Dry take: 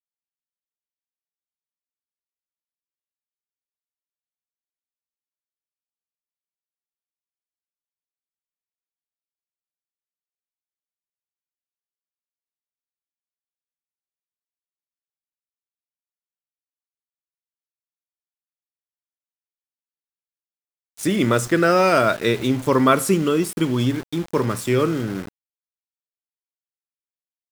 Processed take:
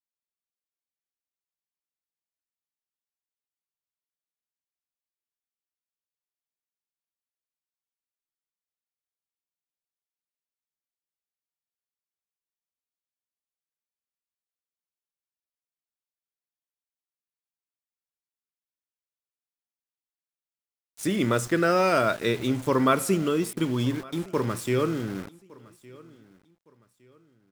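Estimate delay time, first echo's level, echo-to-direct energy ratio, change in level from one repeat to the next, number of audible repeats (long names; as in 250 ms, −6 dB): 1,162 ms, −23.0 dB, −22.5 dB, −10.0 dB, 2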